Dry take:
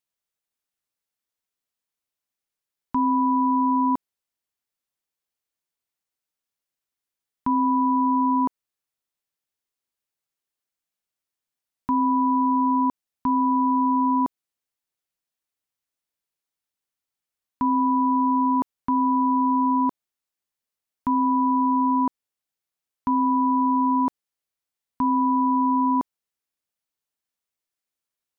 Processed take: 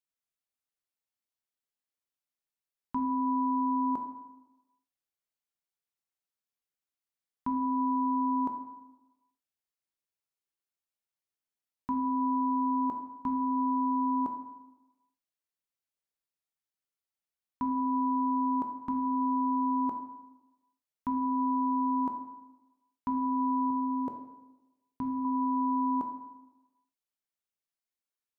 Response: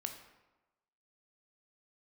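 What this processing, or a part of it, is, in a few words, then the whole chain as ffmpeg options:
bathroom: -filter_complex "[0:a]asettb=1/sr,asplit=3[a][b][c];[a]atrim=end=23.704[d];[b]atrim=start=23.7:end=25.25,asetpts=PTS-STARTPTS,afade=t=in:d=0.004:c=qsin,afade=t=out:st=1.546:d=0.004:c=qsin,equalizer=f=125:t=o:w=1:g=6,equalizer=f=250:t=o:w=1:g=-4,equalizer=f=500:t=o:w=1:g=9,equalizer=f=1k:t=o:w=1:g=-8[e];[c]atrim=start=25.246[f];[d][e]acrossfade=d=0.004:c1=hsin:c2=qsin[g];[g][f]acrossfade=d=0.004:c1=qsin:c2=hsin[h];[1:a]atrim=start_sample=2205[i];[h][i]afir=irnorm=-1:irlink=0,volume=-6dB"

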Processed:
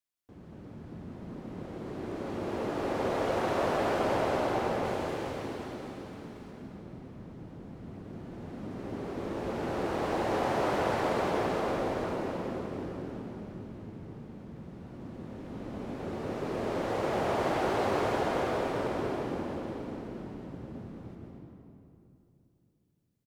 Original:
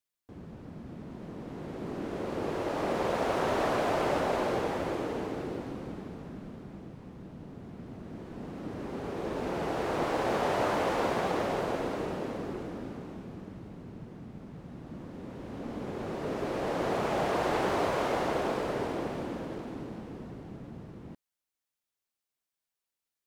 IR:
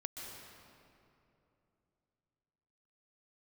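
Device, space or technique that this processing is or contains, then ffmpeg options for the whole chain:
cave: -filter_complex "[0:a]asettb=1/sr,asplit=3[a][b][c];[a]atrim=end=4.854[d];[b]atrim=start=4.85:end=6.51,asetpts=PTS-STARTPTS,afade=t=in:d=0.004:c=qsin,afade=t=out:st=1.656:d=0.004:c=qsin,tiltshelf=f=1.4k:g=-5[e];[c]atrim=start=6.506[f];[d][e]acrossfade=d=0.004:c1=hsin:c2=qsin[g];[g][f]acrossfade=d=0.004:c1=qsin:c2=hsin,aecho=1:1:231:0.316[h];[1:a]atrim=start_sample=2205[i];[h][i]afir=irnorm=-1:irlink=0"

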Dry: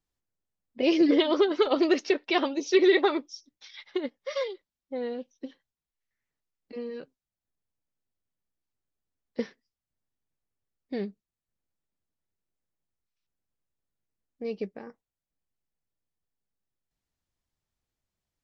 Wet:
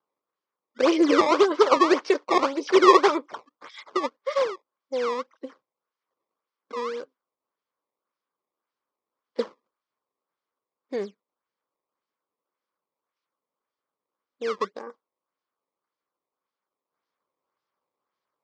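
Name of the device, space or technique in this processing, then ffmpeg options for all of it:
circuit-bent sampling toy: -af "acrusher=samples=17:mix=1:aa=0.000001:lfo=1:lforange=27.2:lforate=1.8,highpass=410,equalizer=f=500:t=q:w=4:g=3,equalizer=f=710:t=q:w=4:g=-5,equalizer=f=1.1k:t=q:w=4:g=8,equalizer=f=1.8k:t=q:w=4:g=-4,equalizer=f=2.7k:t=q:w=4:g=-7,equalizer=f=3.9k:t=q:w=4:g=-5,lowpass=f=5.1k:w=0.5412,lowpass=f=5.1k:w=1.3066,volume=6.5dB"

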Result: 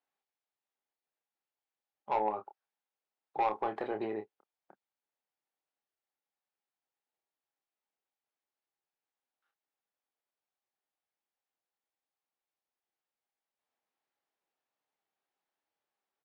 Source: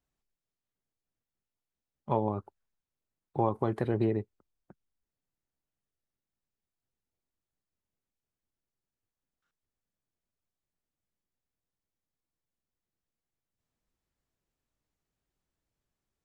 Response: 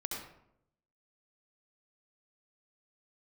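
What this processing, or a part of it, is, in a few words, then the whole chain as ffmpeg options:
intercom: -filter_complex "[0:a]highpass=490,lowpass=3.7k,equalizer=f=810:t=o:w=0.23:g=7.5,asoftclip=type=tanh:threshold=-22.5dB,asplit=2[a][b];[b]adelay=28,volume=-7dB[c];[a][c]amix=inputs=2:normalize=0"

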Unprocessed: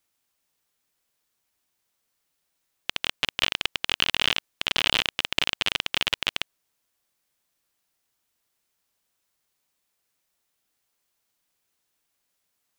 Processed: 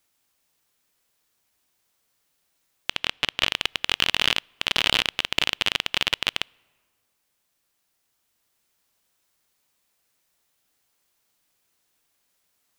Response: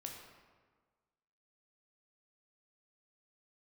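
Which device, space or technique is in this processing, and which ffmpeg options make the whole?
ducked reverb: -filter_complex "[0:a]asettb=1/sr,asplit=3[a][b][c];[a]atrim=end=2.954[d];[b]atrim=start=2.95:end=3.48,asetpts=PTS-STARTPTS,afade=t=in:d=0.004:c=qsin,afade=t=out:st=0.526:d=0.004:c=qsin,highshelf=f=7.8k:g=-7[e];[c]atrim=start=3.476[f];[d][e]acrossfade=d=0.004:c1=hsin:c2=qsin[g];[g][f]acrossfade=d=0.004:c1=qsin:c2=hsin,asplit=3[h][i][j];[1:a]atrim=start_sample=2205[k];[i][k]afir=irnorm=-1:irlink=0[l];[j]apad=whole_len=563954[m];[l][m]sidechaincompress=threshold=-44dB:ratio=3:attack=6.2:release=1190,volume=-1.5dB[n];[h][n]amix=inputs=2:normalize=0,volume=1.5dB"

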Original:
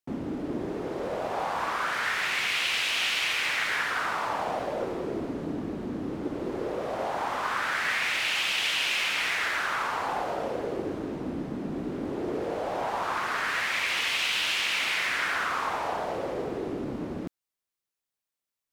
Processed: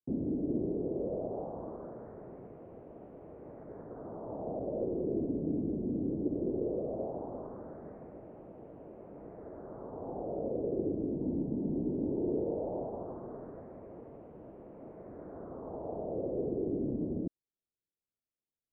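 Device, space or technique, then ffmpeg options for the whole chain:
under water: -filter_complex "[0:a]asettb=1/sr,asplit=3[a][b][c];[a]atrim=end=11.224[d];[b]atrim=start=11.22:end=12.79,asetpts=PTS-STARTPTS,afade=t=in:d=0.004:c=qsin,afade=t=out:st=1.566:d=0.004:c=qsin,equalizer=f=900:t=o:w=0.2:g=9.5[e];[c]atrim=start=12.786[f];[d][e]acrossfade=d=0.004:c1=hsin:c2=qsin[g];[g][f]acrossfade=d=0.004:c1=qsin:c2=hsin,lowpass=f=490:w=0.5412,lowpass=f=490:w=1.3066,equalizer=f=650:t=o:w=0.21:g=4"

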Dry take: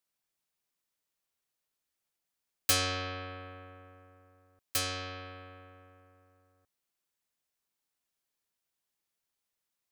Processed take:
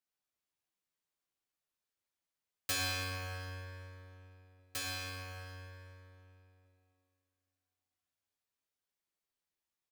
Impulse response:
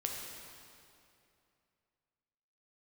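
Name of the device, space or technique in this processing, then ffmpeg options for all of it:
swimming-pool hall: -filter_complex "[1:a]atrim=start_sample=2205[a];[0:a][a]afir=irnorm=-1:irlink=0,highshelf=f=5.9k:g=-4.5,asplit=2[b][c];[c]adelay=12,volume=-6dB[d];[b][d]amix=inputs=2:normalize=0,volume=-7dB"

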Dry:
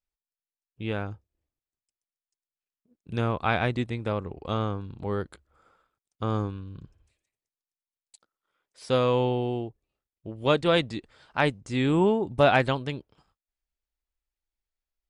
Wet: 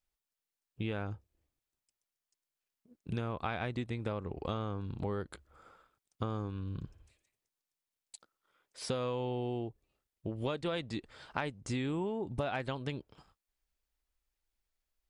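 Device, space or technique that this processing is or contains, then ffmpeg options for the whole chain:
serial compression, leveller first: -af "acompressor=threshold=-25dB:ratio=2,acompressor=threshold=-37dB:ratio=5,volume=3.5dB"

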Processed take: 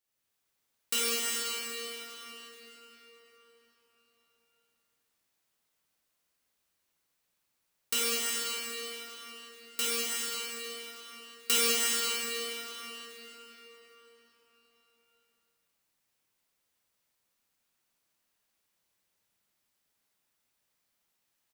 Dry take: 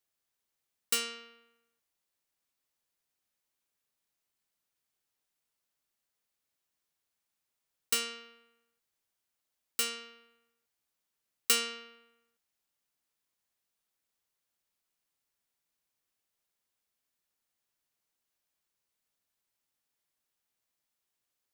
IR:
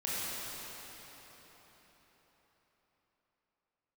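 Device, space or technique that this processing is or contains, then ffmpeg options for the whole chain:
cave: -filter_complex "[0:a]aecho=1:1:335:0.316[a];[1:a]atrim=start_sample=2205[b];[a][b]afir=irnorm=-1:irlink=0"

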